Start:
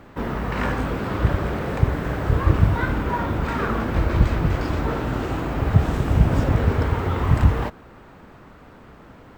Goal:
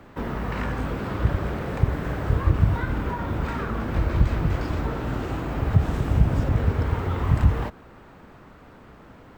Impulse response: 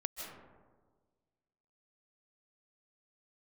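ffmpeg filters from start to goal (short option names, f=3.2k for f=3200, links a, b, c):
-filter_complex "[0:a]acrossover=split=190[a][b];[b]acompressor=threshold=-26dB:ratio=6[c];[a][c]amix=inputs=2:normalize=0,volume=-2dB"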